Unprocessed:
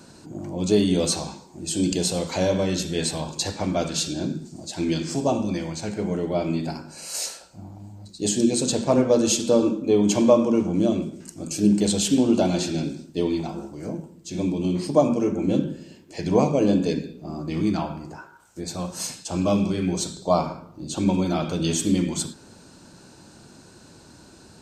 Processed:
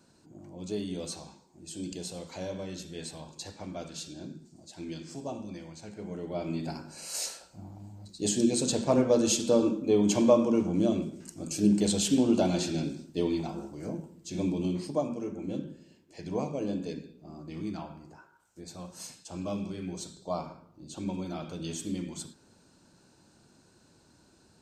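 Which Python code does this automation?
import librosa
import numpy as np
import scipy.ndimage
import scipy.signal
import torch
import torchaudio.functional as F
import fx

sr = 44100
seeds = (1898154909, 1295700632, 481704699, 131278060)

y = fx.gain(x, sr, db=fx.line((5.92, -15.0), (6.81, -5.0), (14.6, -5.0), (15.08, -13.0)))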